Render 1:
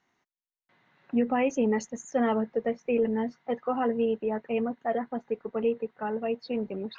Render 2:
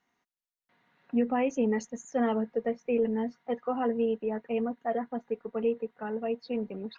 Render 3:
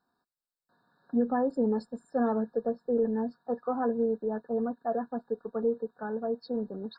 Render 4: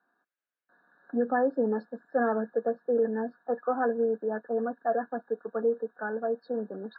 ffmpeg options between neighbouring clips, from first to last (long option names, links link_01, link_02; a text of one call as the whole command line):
ffmpeg -i in.wav -af "aecho=1:1:4.2:0.31,volume=-3.5dB" out.wav
ffmpeg -i in.wav -af "afftfilt=real='re*eq(mod(floor(b*sr/1024/1800),2),0)':imag='im*eq(mod(floor(b*sr/1024/1800),2),0)':win_size=1024:overlap=0.75" out.wav
ffmpeg -i in.wav -af "highpass=frequency=220:width=0.5412,highpass=frequency=220:width=1.3066,equalizer=frequency=240:width_type=q:width=4:gain=-6,equalizer=frequency=410:width_type=q:width=4:gain=-4,equalizer=frequency=960:width_type=q:width=4:gain=-6,equalizer=frequency=1600:width_type=q:width=4:gain=7,lowpass=frequency=2800:width=0.5412,lowpass=frequency=2800:width=1.3066,volume=4.5dB" out.wav